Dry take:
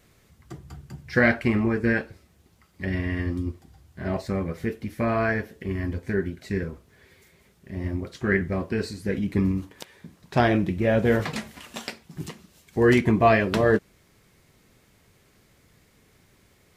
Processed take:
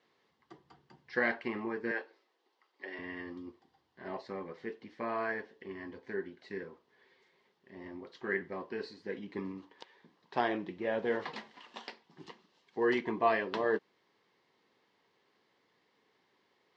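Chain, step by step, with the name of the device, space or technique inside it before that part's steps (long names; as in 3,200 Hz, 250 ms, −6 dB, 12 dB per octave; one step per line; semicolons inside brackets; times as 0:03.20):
phone earpiece (loudspeaker in its box 420–4,300 Hz, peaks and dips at 620 Hz −7 dB, 950 Hz +4 dB, 1,400 Hz −7 dB, 2,400 Hz −8 dB, 3,700 Hz −3 dB)
0:01.91–0:02.99: high-pass filter 320 Hz 24 dB per octave
level −6 dB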